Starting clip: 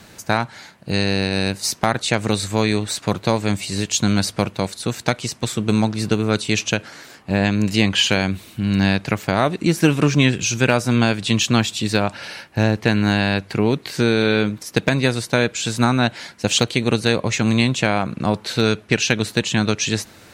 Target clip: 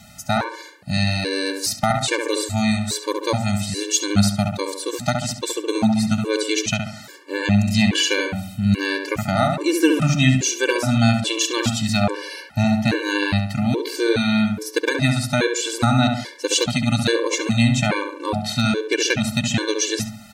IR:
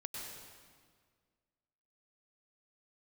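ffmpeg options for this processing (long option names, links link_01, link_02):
-filter_complex "[0:a]highshelf=frequency=4500:gain=5.5,asplit=2[link_01][link_02];[link_02]adelay=69,lowpass=frequency=1900:poles=1,volume=-3.5dB,asplit=2[link_03][link_04];[link_04]adelay=69,lowpass=frequency=1900:poles=1,volume=0.48,asplit=2[link_05][link_06];[link_06]adelay=69,lowpass=frequency=1900:poles=1,volume=0.48,asplit=2[link_07][link_08];[link_08]adelay=69,lowpass=frequency=1900:poles=1,volume=0.48,asplit=2[link_09][link_10];[link_10]adelay=69,lowpass=frequency=1900:poles=1,volume=0.48,asplit=2[link_11][link_12];[link_12]adelay=69,lowpass=frequency=1900:poles=1,volume=0.48[link_13];[link_03][link_05][link_07][link_09][link_11][link_13]amix=inputs=6:normalize=0[link_14];[link_01][link_14]amix=inputs=2:normalize=0,afftfilt=real='re*gt(sin(2*PI*1.2*pts/sr)*(1-2*mod(floor(b*sr/1024/300),2)),0)':imag='im*gt(sin(2*PI*1.2*pts/sr)*(1-2*mod(floor(b*sr/1024/300),2)),0)':win_size=1024:overlap=0.75"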